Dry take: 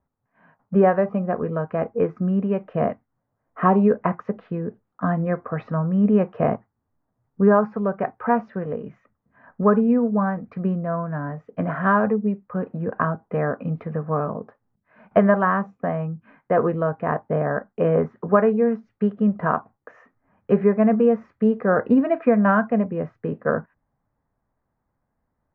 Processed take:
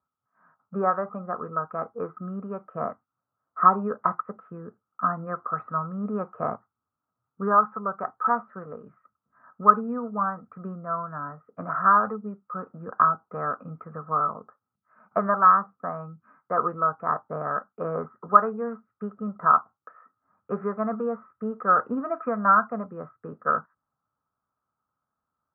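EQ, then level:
high-pass filter 81 Hz
dynamic equaliser 930 Hz, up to +4 dB, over −34 dBFS, Q 1.2
low-pass with resonance 1,300 Hz, resonance Q 15
−13.0 dB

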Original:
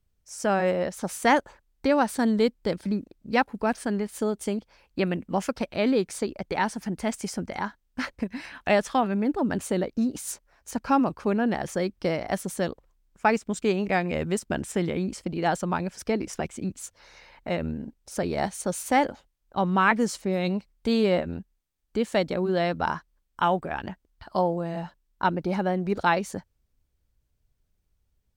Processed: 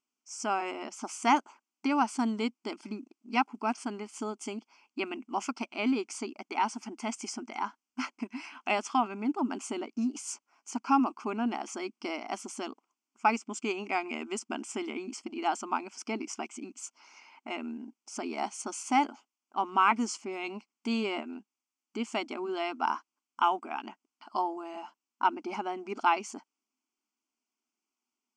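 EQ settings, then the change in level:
linear-phase brick-wall band-pass 220–12,000 Hz
phaser with its sweep stopped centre 2,600 Hz, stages 8
0.0 dB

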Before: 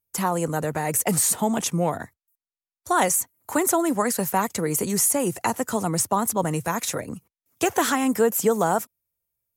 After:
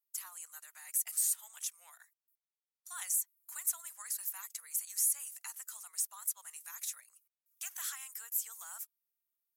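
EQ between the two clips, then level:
four-pole ladder high-pass 960 Hz, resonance 25%
first difference
−5.0 dB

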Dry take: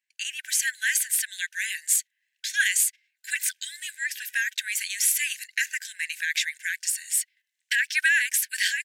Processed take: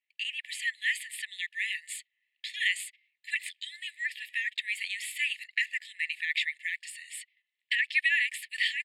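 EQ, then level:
linear-phase brick-wall high-pass 1,700 Hz
high-frequency loss of the air 100 metres
phaser with its sweep stopped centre 2,600 Hz, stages 4
+1.0 dB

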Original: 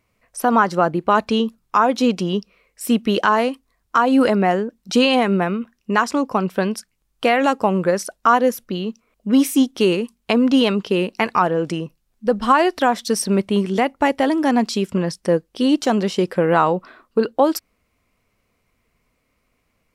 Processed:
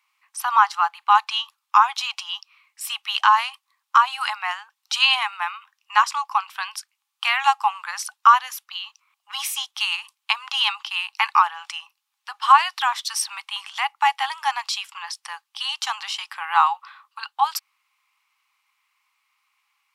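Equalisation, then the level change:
Chebyshev high-pass with heavy ripple 800 Hz, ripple 6 dB
+4.5 dB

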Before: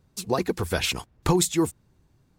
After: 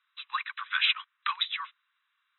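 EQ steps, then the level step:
Butterworth high-pass 1,100 Hz 72 dB per octave
linear-phase brick-wall low-pass 4,000 Hz
+3.5 dB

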